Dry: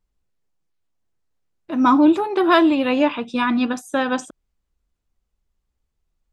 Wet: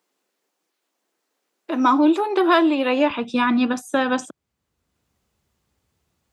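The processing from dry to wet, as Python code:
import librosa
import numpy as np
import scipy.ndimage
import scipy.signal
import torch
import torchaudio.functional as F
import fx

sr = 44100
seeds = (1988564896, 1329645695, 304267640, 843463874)

y = fx.highpass(x, sr, hz=fx.steps((0.0, 280.0), (3.1, 79.0)), slope=24)
y = fx.band_squash(y, sr, depth_pct=40)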